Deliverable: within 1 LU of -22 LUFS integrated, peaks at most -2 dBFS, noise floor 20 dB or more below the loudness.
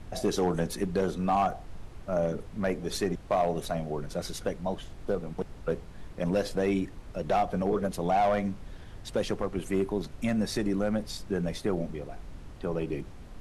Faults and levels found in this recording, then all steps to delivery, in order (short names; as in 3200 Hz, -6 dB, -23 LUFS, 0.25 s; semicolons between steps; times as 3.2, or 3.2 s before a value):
clipped 0.5%; flat tops at -19.0 dBFS; noise floor -46 dBFS; noise floor target -51 dBFS; loudness -30.5 LUFS; peak -19.0 dBFS; loudness target -22.0 LUFS
-> clip repair -19 dBFS; noise print and reduce 6 dB; gain +8.5 dB